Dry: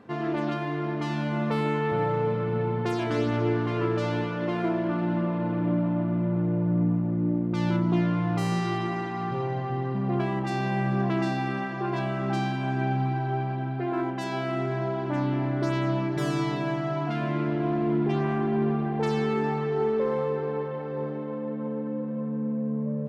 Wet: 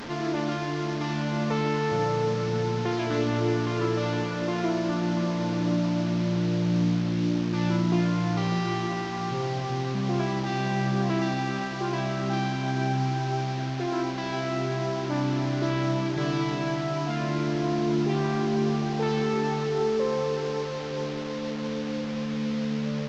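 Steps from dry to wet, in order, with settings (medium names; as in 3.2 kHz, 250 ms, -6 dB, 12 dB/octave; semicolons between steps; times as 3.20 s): one-bit delta coder 32 kbps, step -31.5 dBFS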